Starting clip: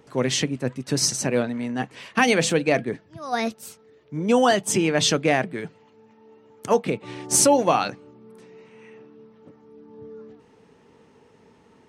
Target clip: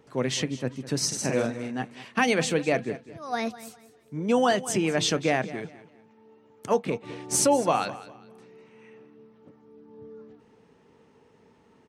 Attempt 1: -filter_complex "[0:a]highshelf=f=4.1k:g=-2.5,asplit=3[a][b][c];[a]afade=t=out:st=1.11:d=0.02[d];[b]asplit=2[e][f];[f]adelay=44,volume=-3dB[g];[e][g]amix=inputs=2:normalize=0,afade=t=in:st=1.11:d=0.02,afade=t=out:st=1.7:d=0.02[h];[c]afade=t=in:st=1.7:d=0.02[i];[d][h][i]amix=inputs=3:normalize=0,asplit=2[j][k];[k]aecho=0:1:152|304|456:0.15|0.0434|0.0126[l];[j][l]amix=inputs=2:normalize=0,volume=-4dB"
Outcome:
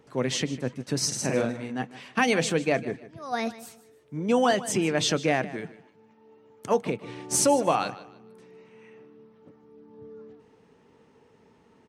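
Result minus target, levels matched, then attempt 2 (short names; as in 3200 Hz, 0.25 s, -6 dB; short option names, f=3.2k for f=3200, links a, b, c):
echo 51 ms early
-filter_complex "[0:a]highshelf=f=4.1k:g=-2.5,asplit=3[a][b][c];[a]afade=t=out:st=1.11:d=0.02[d];[b]asplit=2[e][f];[f]adelay=44,volume=-3dB[g];[e][g]amix=inputs=2:normalize=0,afade=t=in:st=1.11:d=0.02,afade=t=out:st=1.7:d=0.02[h];[c]afade=t=in:st=1.7:d=0.02[i];[d][h][i]amix=inputs=3:normalize=0,asplit=2[j][k];[k]aecho=0:1:203|406|609:0.15|0.0434|0.0126[l];[j][l]amix=inputs=2:normalize=0,volume=-4dB"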